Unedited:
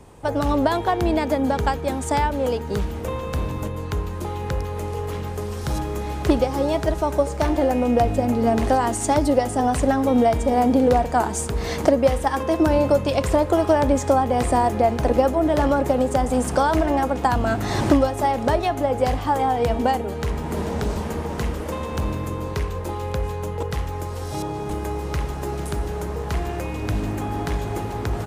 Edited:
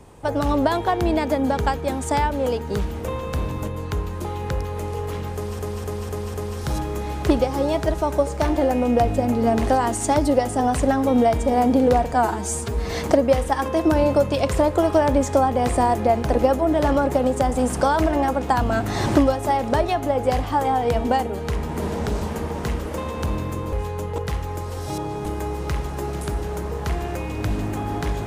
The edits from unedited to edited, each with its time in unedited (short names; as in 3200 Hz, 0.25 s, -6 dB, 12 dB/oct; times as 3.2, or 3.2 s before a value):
5.34–5.59 loop, 5 plays
11.13–11.64 stretch 1.5×
22.47–23.17 cut